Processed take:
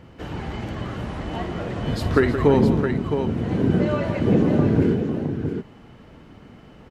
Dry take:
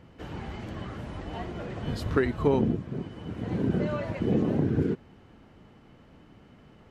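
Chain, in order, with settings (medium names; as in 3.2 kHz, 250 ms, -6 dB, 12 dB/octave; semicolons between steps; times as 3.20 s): multi-tap echo 50/171/322/665 ms -13/-10/-14/-7 dB; trim +6.5 dB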